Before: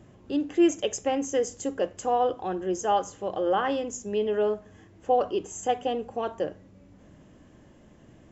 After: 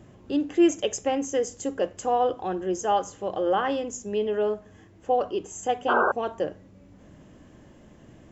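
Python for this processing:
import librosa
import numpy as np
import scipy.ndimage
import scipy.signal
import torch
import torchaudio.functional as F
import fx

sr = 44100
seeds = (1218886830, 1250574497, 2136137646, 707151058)

y = fx.spec_paint(x, sr, seeds[0], shape='noise', start_s=5.88, length_s=0.24, low_hz=340.0, high_hz=1600.0, level_db=-22.0)
y = fx.rider(y, sr, range_db=10, speed_s=2.0)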